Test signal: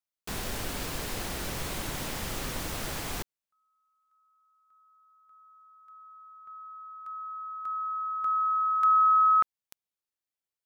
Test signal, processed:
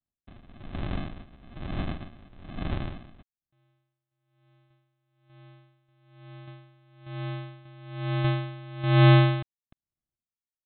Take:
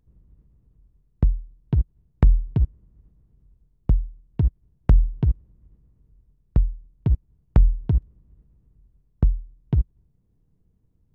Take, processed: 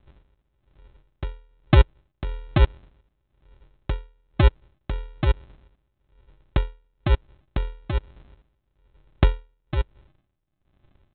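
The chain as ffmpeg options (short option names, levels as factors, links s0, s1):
-af "aresample=8000,acrusher=samples=17:mix=1:aa=0.000001,aresample=44100,aeval=exprs='val(0)*pow(10,-22*(0.5-0.5*cos(2*PI*1.1*n/s))/20)':c=same,volume=2.11"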